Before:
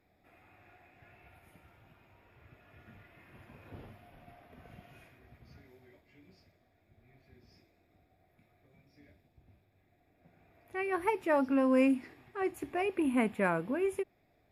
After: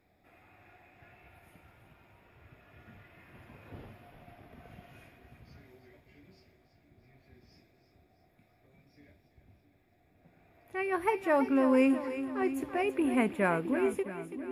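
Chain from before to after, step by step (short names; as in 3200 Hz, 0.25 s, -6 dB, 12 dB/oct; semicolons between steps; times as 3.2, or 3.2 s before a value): split-band echo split 410 Hz, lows 0.665 s, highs 0.331 s, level -10.5 dB; gain +1.5 dB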